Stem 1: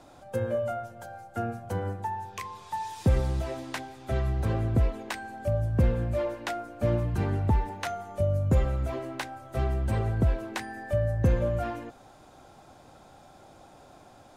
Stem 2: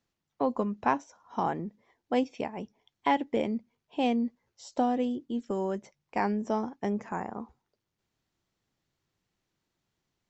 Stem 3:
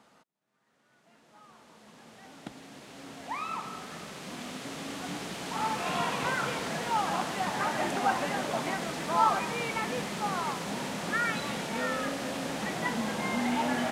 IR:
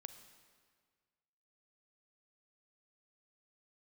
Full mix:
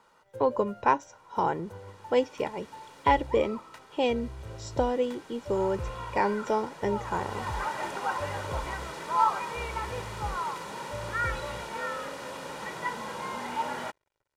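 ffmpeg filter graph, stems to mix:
-filter_complex "[0:a]equalizer=f=650:t=o:w=0.45:g=3.5,aeval=exprs='sgn(val(0))*max(abs(val(0))-0.00447,0)':c=same,volume=-15.5dB[a];[1:a]volume=2dB[b];[2:a]equalizer=f=1.1k:w=1.6:g=7.5,volume=4.5dB,afade=t=out:st=2.7:d=0.71:silence=0.266073,afade=t=in:st=6.95:d=0.59:silence=0.354813[c];[a][b][c]amix=inputs=3:normalize=0,aecho=1:1:2.1:0.57"

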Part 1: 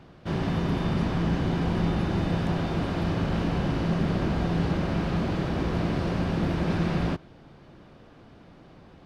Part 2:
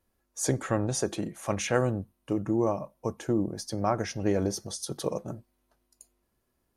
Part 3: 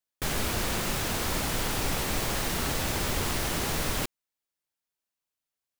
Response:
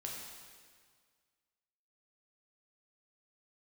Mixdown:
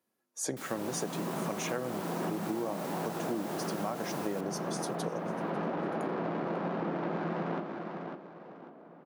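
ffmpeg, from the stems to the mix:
-filter_complex "[0:a]bandpass=f=920:t=q:w=0.61:csg=0,adynamicsmooth=sensitivity=3:basefreq=1.1k,adelay=450,volume=2dB,asplit=3[a][b][c];[b]volume=-5.5dB[d];[c]volume=-8.5dB[e];[1:a]volume=-3.5dB,asplit=3[f][g][h];[g]volume=-22.5dB[i];[2:a]highshelf=f=10k:g=4.5,adelay=350,volume=-15.5dB,asplit=2[j][k];[k]volume=-14dB[l];[h]apad=whole_len=419097[m];[a][m]sidechaincompress=threshold=-45dB:ratio=8:attack=16:release=309[n];[3:a]atrim=start_sample=2205[o];[d][o]afir=irnorm=-1:irlink=0[p];[e][i][l]amix=inputs=3:normalize=0,aecho=0:1:547|1094|1641|2188:1|0.29|0.0841|0.0244[q];[n][f][j][p][q]amix=inputs=5:normalize=0,highpass=f=160:w=0.5412,highpass=f=160:w=1.3066,acompressor=threshold=-30dB:ratio=6"

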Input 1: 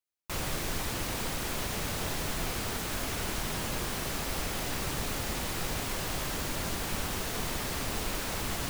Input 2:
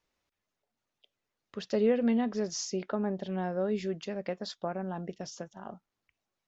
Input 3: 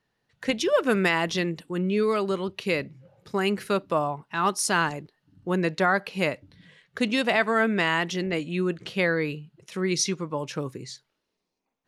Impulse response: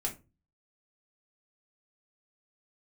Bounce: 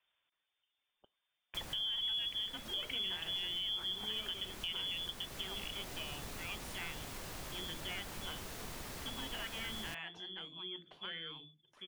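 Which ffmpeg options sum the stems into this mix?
-filter_complex "[0:a]adelay=1250,volume=-10.5dB[a];[1:a]volume=0.5dB,asplit=2[b][c];[2:a]adelay=2050,volume=-19dB,asplit=2[d][e];[e]volume=-11dB[f];[c]apad=whole_len=438546[g];[a][g]sidechaincompress=threshold=-31dB:ratio=8:attack=10:release=1190[h];[b][d]amix=inputs=2:normalize=0,lowpass=f=3.1k:t=q:w=0.5098,lowpass=f=3.1k:t=q:w=0.6013,lowpass=f=3.1k:t=q:w=0.9,lowpass=f=3.1k:t=q:w=2.563,afreqshift=-3600,alimiter=level_in=1.5dB:limit=-24dB:level=0:latency=1,volume=-1.5dB,volume=0dB[i];[3:a]atrim=start_sample=2205[j];[f][j]afir=irnorm=-1:irlink=0[k];[h][i][k]amix=inputs=3:normalize=0,acompressor=threshold=-44dB:ratio=1.5"

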